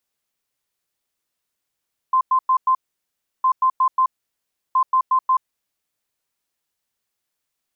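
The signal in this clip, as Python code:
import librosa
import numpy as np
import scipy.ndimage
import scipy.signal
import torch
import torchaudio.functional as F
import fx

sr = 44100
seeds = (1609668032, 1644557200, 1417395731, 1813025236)

y = fx.beep_pattern(sr, wave='sine', hz=1040.0, on_s=0.08, off_s=0.1, beeps=4, pause_s=0.69, groups=3, level_db=-13.0)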